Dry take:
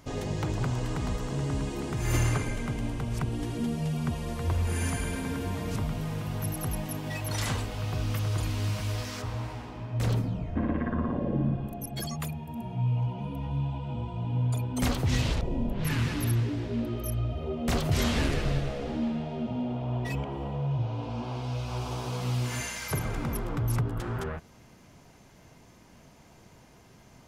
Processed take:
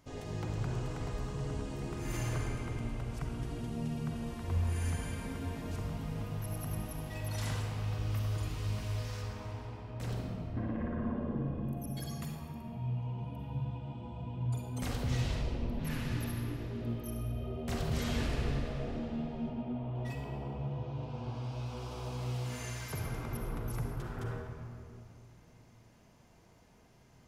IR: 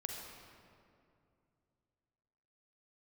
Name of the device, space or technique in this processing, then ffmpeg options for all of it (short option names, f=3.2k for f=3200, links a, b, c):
stairwell: -filter_complex "[0:a]asettb=1/sr,asplit=3[a][b][c];[a]atrim=end=19.494[d];[b]atrim=start=19.49:end=19.95,asetpts=PTS-STARTPTS,afade=t=in:d=0.004:c=qsin,afade=t=out:st=0.456:d=0.004:c=qsin,lowpass=3.1k[e];[c]atrim=start=19.946[f];[d][e]acrossfade=d=0.004:c1=hsin:c2=qsin[g];[g][f]acrossfade=d=0.004:c1=qsin:c2=hsin[h];[1:a]atrim=start_sample=2205[i];[h][i]afir=irnorm=-1:irlink=0,volume=-7.5dB"